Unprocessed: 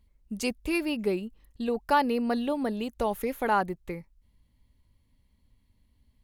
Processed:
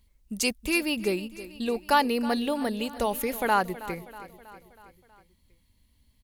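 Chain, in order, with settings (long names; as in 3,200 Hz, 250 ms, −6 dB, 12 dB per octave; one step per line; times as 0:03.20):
high-shelf EQ 2,300 Hz +10 dB
repeating echo 321 ms, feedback 57%, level −16 dB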